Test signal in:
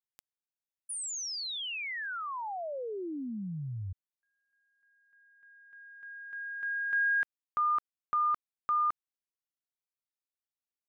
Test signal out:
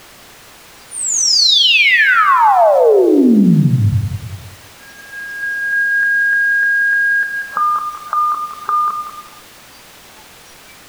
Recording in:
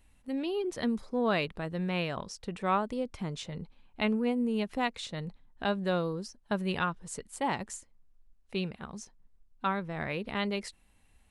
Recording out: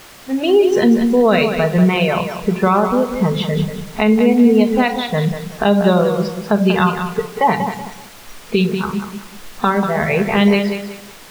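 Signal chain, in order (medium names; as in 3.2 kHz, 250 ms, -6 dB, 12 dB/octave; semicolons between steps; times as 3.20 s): recorder AGC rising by 7.7 dB/s; level-controlled noise filter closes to 1.2 kHz, open at -25 dBFS; reverb removal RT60 0.63 s; bass shelf 190 Hz -8.5 dB; simulated room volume 2200 m³, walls furnished, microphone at 1.5 m; added noise white -41 dBFS; low-pass 2.6 kHz 6 dB/octave; dynamic bell 1.4 kHz, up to -6 dB, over -40 dBFS, Q 0.77; spectral noise reduction 13 dB; loudness maximiser +24 dB; bit-crushed delay 189 ms, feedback 35%, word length 6-bit, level -8 dB; trim -3.5 dB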